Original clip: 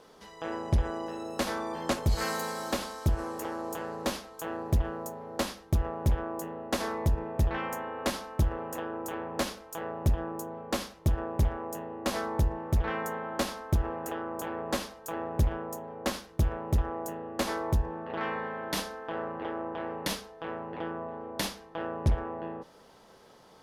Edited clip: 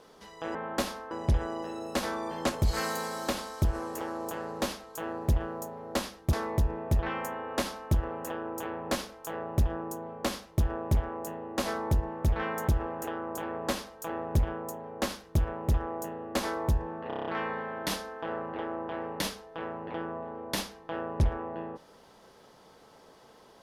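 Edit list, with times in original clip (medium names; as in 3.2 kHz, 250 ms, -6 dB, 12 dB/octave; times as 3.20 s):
5.77–6.81 s: delete
13.16–13.72 s: move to 0.55 s
18.12 s: stutter 0.03 s, 7 plays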